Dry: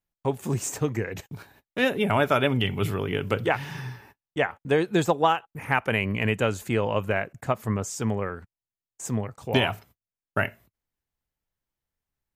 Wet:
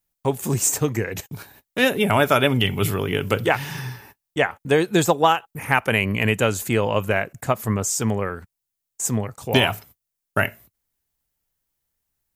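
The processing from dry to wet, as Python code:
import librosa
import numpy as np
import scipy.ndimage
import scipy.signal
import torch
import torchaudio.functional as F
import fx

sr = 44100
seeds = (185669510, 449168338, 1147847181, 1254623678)

y = fx.high_shelf(x, sr, hz=5900.0, db=12.0)
y = F.gain(torch.from_numpy(y), 4.0).numpy()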